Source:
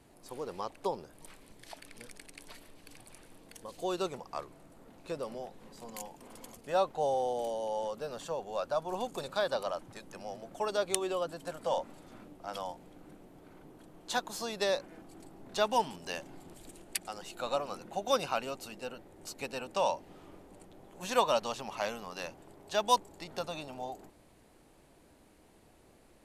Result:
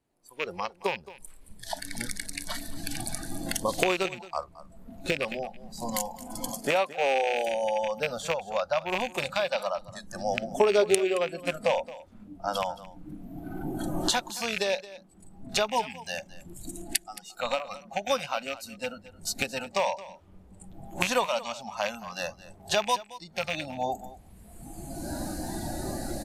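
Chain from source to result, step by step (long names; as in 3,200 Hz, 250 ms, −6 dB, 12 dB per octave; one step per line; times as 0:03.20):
loose part that buzzes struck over −46 dBFS, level −23 dBFS
camcorder AGC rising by 14 dB per second
0:06.50–0:07.48: high-pass filter 180 Hz 12 dB per octave
noise reduction from a noise print of the clip's start 17 dB
0:10.41–0:11.92: hollow resonant body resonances 260/400 Hz, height 12 dB, ringing for 45 ms
on a send: single-tap delay 221 ms −17.5 dB
on the sum: level −1 dB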